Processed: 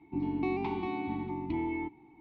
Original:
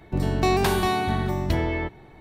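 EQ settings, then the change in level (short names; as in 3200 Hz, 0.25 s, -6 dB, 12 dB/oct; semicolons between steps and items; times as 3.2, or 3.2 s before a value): vowel filter u; LPF 4700 Hz 24 dB/oct; low shelf 130 Hz +10 dB; +1.0 dB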